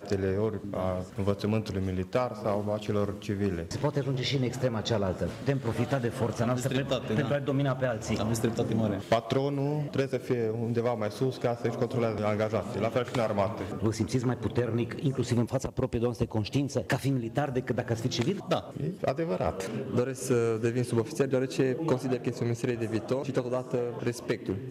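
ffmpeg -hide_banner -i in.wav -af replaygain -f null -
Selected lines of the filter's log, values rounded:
track_gain = +10.9 dB
track_peak = 0.190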